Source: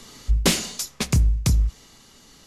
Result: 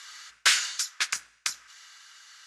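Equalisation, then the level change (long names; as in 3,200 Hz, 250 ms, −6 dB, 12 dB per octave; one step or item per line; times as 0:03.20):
high-pass with resonance 1,500 Hz, resonance Q 4.4
high-frequency loss of the air 90 metres
parametric band 13,000 Hz +14.5 dB 2.1 octaves
−4.0 dB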